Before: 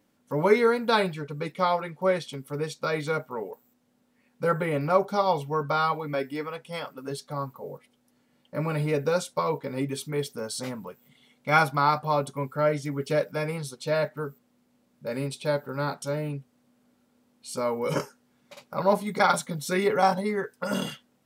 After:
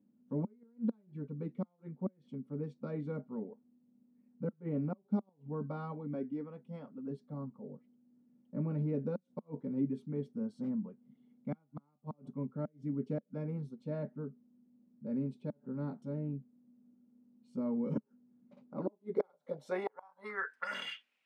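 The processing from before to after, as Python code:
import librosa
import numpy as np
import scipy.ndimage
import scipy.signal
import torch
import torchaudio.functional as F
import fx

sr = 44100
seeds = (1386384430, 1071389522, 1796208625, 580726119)

y = fx.gate_flip(x, sr, shuts_db=-14.0, range_db=-37)
y = fx.filter_sweep_bandpass(y, sr, from_hz=220.0, to_hz=2500.0, start_s=18.57, end_s=20.97, q=4.4)
y = y * librosa.db_to_amplitude(5.0)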